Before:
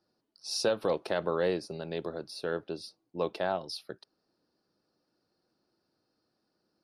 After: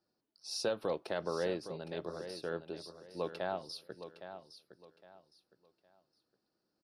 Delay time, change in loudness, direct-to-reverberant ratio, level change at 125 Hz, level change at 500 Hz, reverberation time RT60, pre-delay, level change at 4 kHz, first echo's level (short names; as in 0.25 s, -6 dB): 0.812 s, -6.5 dB, none, -5.5 dB, -5.5 dB, none, none, -5.5 dB, -11.0 dB